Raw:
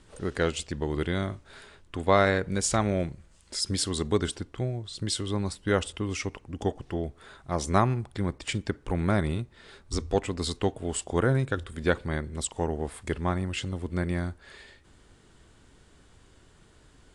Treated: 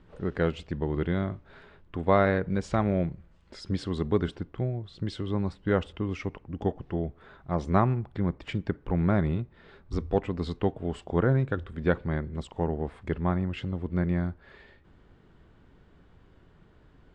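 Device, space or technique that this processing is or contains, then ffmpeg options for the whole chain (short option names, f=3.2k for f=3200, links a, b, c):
phone in a pocket: -af "lowpass=3.4k,equalizer=f=170:t=o:w=0.38:g=5,highshelf=f=2.2k:g=-8.5"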